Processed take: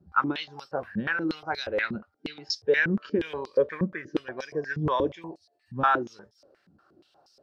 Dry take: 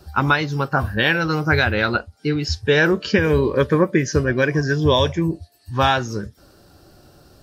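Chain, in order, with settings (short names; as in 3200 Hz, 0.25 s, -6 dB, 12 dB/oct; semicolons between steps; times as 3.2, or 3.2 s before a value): 4.8–6.03 dynamic EQ 570 Hz, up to +6 dB, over -31 dBFS, Q 0.82; stepped band-pass 8.4 Hz 200–5200 Hz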